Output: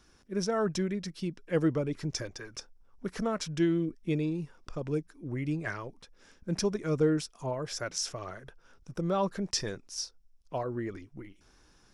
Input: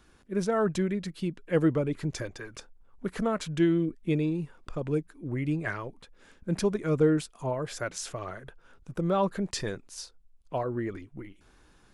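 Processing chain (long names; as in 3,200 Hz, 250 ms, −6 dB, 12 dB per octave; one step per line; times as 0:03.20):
parametric band 5,500 Hz +13 dB 0.34 octaves
level −3 dB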